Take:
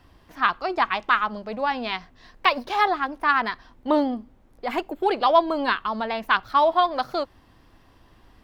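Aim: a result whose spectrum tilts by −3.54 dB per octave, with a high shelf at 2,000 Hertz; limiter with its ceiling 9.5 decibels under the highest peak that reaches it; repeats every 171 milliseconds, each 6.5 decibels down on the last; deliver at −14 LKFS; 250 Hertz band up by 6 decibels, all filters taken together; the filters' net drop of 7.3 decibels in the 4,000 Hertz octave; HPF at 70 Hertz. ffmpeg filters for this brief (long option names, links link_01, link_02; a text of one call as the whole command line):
ffmpeg -i in.wav -af "highpass=70,equalizer=frequency=250:width_type=o:gain=7.5,highshelf=frequency=2000:gain=-4,equalizer=frequency=4000:width_type=o:gain=-6,alimiter=limit=-16.5dB:level=0:latency=1,aecho=1:1:171|342|513|684|855|1026:0.473|0.222|0.105|0.0491|0.0231|0.0109,volume=12dB" out.wav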